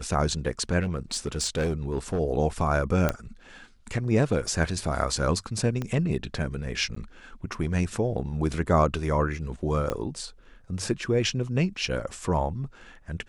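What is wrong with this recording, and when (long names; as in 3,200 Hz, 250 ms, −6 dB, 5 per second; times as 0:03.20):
0:00.81–0:02.20: clipping −22 dBFS
0:03.09: click −10 dBFS
0:05.82: click −18 dBFS
0:06.95–0:06.96: drop-out 14 ms
0:09.90: click −14 dBFS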